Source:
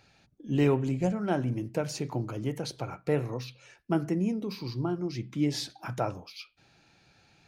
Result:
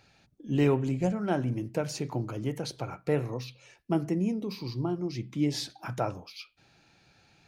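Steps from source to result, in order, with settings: 3.29–5.56 bell 1500 Hz -7 dB 0.38 oct

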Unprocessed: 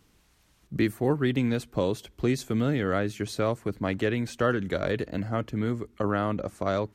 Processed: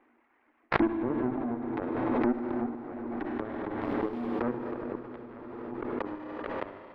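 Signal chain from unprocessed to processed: half-waves squared off; reverb removal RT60 1 s; treble ducked by the level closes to 360 Hz, closed at -22.5 dBFS; resonant high shelf 3100 Hz -13.5 dB, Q 3; 3.8–4.35 added noise pink -41 dBFS; 5.16–5.78 negative-ratio compressor -29 dBFS, ratio -0.5; rippled Chebyshev high-pass 230 Hz, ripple 6 dB; added harmonics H 2 -15 dB, 7 -17 dB, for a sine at -16.5 dBFS; air absorption 400 m; reverb RT60 4.7 s, pre-delay 49 ms, DRR 5 dB; backwards sustainer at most 21 dB/s

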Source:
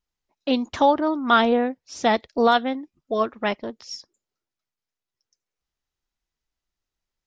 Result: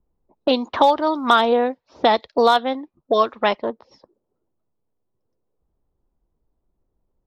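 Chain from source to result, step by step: low-pass opened by the level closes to 330 Hz, open at -19 dBFS; graphic EQ 500/1000/4000 Hz +6/+9/+11 dB; short-mantissa float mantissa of 8-bit; three-band squash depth 70%; gain -4 dB

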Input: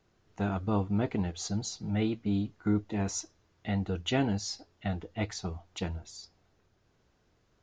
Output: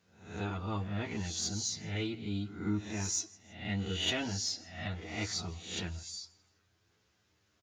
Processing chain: spectral swells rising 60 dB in 0.60 s; HPF 83 Hz; tilt shelf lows -4 dB; on a send: feedback echo 0.16 s, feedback 38%, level -24 dB; on the sum: chorus voices 4, 0.27 Hz, delay 11 ms, depth 1.8 ms; in parallel at -7.5 dB: soft clip -28 dBFS, distortion -15 dB; on the sum: bell 660 Hz -5 dB 1.7 oct; gain -2.5 dB

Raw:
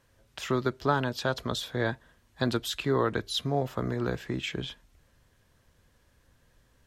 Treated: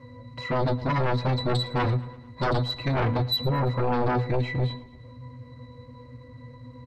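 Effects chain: power-law curve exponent 0.7; octave resonator B, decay 0.22 s; sine folder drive 16 dB, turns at -19 dBFS; on a send: feedback echo 0.112 s, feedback 55%, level -19.5 dB; on the sum: gain -1.5 dB

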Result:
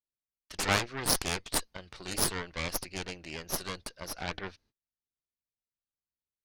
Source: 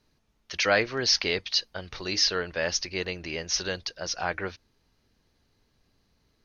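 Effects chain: added harmonics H 3 -35 dB, 6 -10 dB, 7 -13 dB, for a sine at -7.5 dBFS; gate -59 dBFS, range -28 dB; gain -5 dB

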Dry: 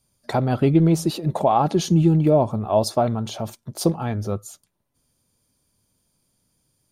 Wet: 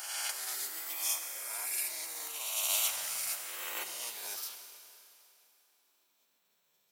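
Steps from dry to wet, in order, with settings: spectral swells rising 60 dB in 2.15 s; dynamic EQ 2900 Hz, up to +4 dB, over -37 dBFS, Q 1.7; high-pass sweep 2800 Hz -> 260 Hz, 2.97–6.87; tilt +4 dB/oct; 2.7–3.34 backlash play -38.5 dBFS; spectral gate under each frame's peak -20 dB weak; Schroeder reverb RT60 2.9 s, combs from 33 ms, DRR 6.5 dB; gain -5.5 dB

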